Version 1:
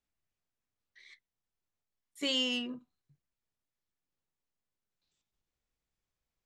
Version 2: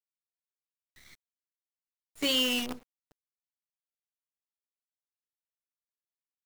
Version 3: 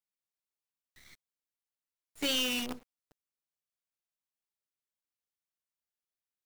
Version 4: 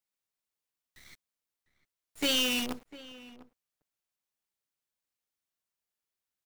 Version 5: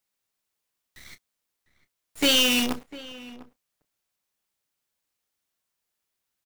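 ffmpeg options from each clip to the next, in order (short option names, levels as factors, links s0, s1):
-af "acrusher=bits=7:dc=4:mix=0:aa=0.000001,volume=1.58"
-af "aeval=exprs='clip(val(0),-1,0.0376)':c=same,volume=0.841"
-filter_complex "[0:a]asplit=2[s0][s1];[s1]adelay=699.7,volume=0.141,highshelf=f=4000:g=-15.7[s2];[s0][s2]amix=inputs=2:normalize=0,volume=1.41"
-filter_complex "[0:a]asplit=2[s0][s1];[s1]adelay=29,volume=0.237[s2];[s0][s2]amix=inputs=2:normalize=0,volume=2.37"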